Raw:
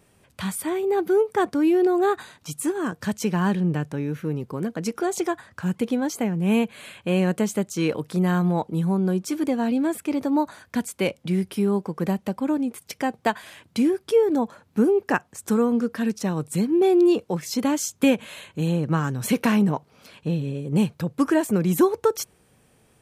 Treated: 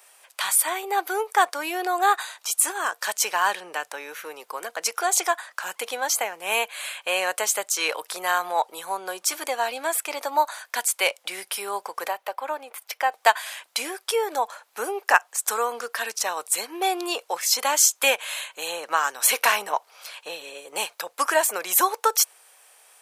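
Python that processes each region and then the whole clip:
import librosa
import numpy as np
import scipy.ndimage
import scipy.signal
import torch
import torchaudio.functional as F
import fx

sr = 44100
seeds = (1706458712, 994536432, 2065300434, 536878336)

y = fx.chain(x, sr, fx.highpass(hz=340.0, slope=12),
    fx.peak_eq(hz=7900.0, db=-12.5, octaves=1.9), at=(12.08, 13.12))
y = scipy.signal.sosfilt(scipy.signal.butter(4, 670.0, 'highpass', fs=sr, output='sos'), y)
y = fx.high_shelf(y, sr, hz=5200.0, db=7.0)
y = F.gain(torch.from_numpy(y), 7.0).numpy()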